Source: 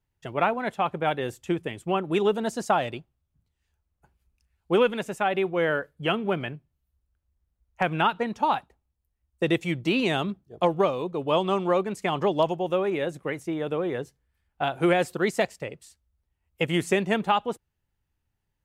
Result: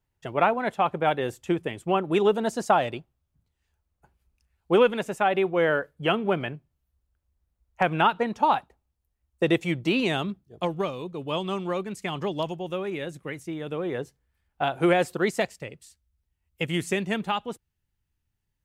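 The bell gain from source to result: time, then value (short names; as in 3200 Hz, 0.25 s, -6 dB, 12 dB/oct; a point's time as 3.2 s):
bell 690 Hz 2.4 oct
9.7 s +2.5 dB
10.76 s -7.5 dB
13.62 s -7.5 dB
14.02 s +1 dB
15.2 s +1 dB
15.7 s -6 dB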